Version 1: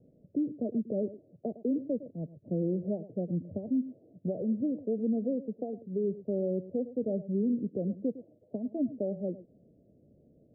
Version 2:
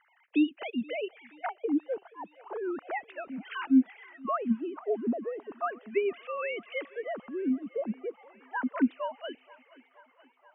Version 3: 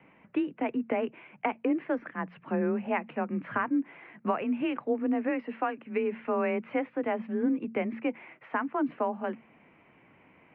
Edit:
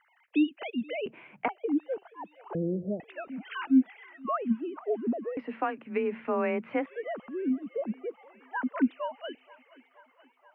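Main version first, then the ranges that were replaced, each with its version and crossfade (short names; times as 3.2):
2
1.06–1.48 from 3
2.55–3 from 1
5.37–6.86 from 3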